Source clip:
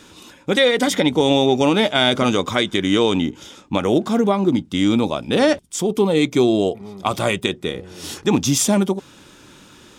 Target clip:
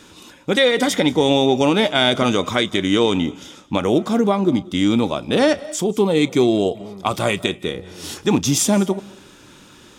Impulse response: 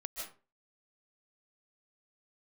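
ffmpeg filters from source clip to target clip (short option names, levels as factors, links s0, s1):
-filter_complex "[0:a]asplit=2[s0][s1];[1:a]atrim=start_sample=2205,adelay=34[s2];[s1][s2]afir=irnorm=-1:irlink=0,volume=0.158[s3];[s0][s3]amix=inputs=2:normalize=0"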